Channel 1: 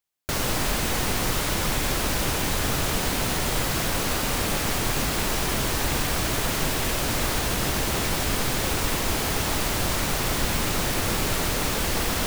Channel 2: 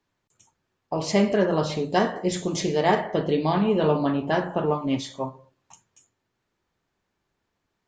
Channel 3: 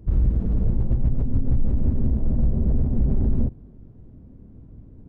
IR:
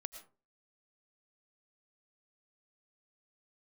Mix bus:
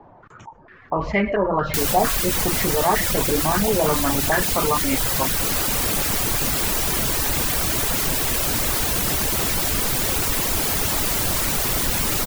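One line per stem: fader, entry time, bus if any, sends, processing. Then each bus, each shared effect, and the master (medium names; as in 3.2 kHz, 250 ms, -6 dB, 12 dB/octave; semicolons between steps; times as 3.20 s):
-5.0 dB, 1.45 s, no send, none
-8.0 dB, 0.00 s, send -5 dB, step-sequenced low-pass 4.4 Hz 790–2100 Hz
-19.5 dB, 0.90 s, no send, saturation -21 dBFS, distortion -11 dB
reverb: on, RT60 0.35 s, pre-delay 70 ms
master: reverb removal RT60 0.68 s; treble shelf 7.8 kHz +10 dB; level flattener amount 50%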